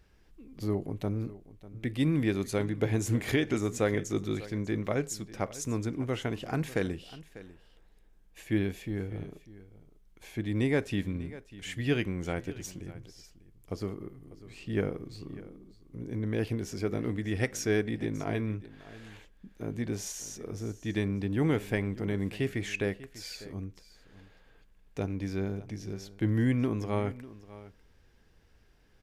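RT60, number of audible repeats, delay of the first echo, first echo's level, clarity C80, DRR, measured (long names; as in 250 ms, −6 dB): no reverb audible, 1, 596 ms, −17.5 dB, no reverb audible, no reverb audible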